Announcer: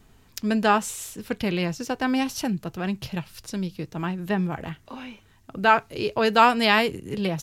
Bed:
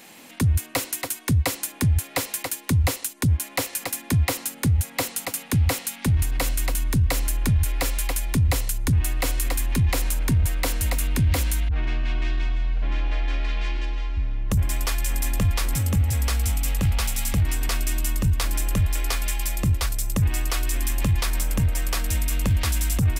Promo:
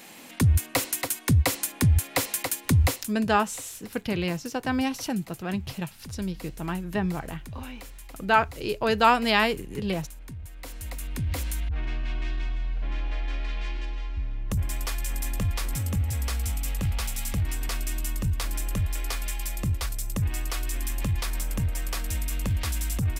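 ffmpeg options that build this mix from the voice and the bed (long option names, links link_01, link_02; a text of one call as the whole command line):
ffmpeg -i stem1.wav -i stem2.wav -filter_complex "[0:a]adelay=2650,volume=-2.5dB[link_01];[1:a]volume=14dB,afade=type=out:start_time=2.83:duration=0.3:silence=0.105925,afade=type=in:start_time=10.51:duration=1.2:silence=0.199526[link_02];[link_01][link_02]amix=inputs=2:normalize=0" out.wav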